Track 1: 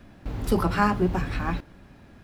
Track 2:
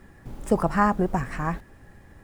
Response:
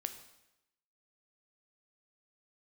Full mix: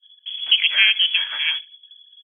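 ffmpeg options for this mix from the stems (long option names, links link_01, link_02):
-filter_complex "[0:a]acompressor=threshold=-27dB:ratio=6,volume=-7.5dB,asplit=2[link_01][link_02];[link_02]volume=-9.5dB[link_03];[1:a]agate=range=-33dB:threshold=-46dB:ratio=3:detection=peak,adelay=0.5,volume=1.5dB,asplit=2[link_04][link_05];[link_05]volume=-5.5dB[link_06];[2:a]atrim=start_sample=2205[link_07];[link_03][link_06]amix=inputs=2:normalize=0[link_08];[link_08][link_07]afir=irnorm=-1:irlink=0[link_09];[link_01][link_04][link_09]amix=inputs=3:normalize=0,anlmdn=1,lowpass=frequency=2900:width_type=q:width=0.5098,lowpass=frequency=2900:width_type=q:width=0.6013,lowpass=frequency=2900:width_type=q:width=0.9,lowpass=frequency=2900:width_type=q:width=2.563,afreqshift=-3400"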